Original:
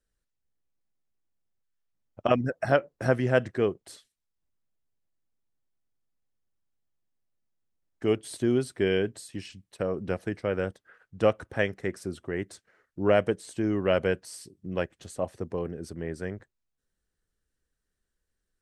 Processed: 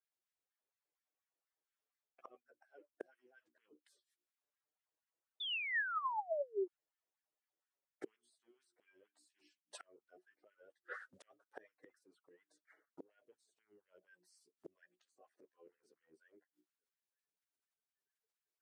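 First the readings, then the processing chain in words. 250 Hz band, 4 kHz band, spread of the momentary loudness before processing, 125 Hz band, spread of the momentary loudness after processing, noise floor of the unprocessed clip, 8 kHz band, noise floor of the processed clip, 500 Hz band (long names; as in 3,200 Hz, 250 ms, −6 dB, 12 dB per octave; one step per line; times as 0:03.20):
−28.5 dB, −7.0 dB, 13 LU, below −40 dB, 22 LU, −83 dBFS, −22.5 dB, below −85 dBFS, −22.0 dB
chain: spectral magnitudes quantised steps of 30 dB
noise gate with hold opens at −50 dBFS
mains-hum notches 60/120/180/240/300/360 Hz
reversed playback
downward compressor 12 to 1, threshold −37 dBFS, peak gain reduction 20.5 dB
reversed playback
multi-voice chorus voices 2, 0.16 Hz, delay 10 ms, depth 3.8 ms
gate with flip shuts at −47 dBFS, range −37 dB
sound drawn into the spectrogram fall, 0:05.40–0:06.68, 340–3,600 Hz −54 dBFS
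auto-filter high-pass sine 4.2 Hz 350–1,800 Hz
level +12.5 dB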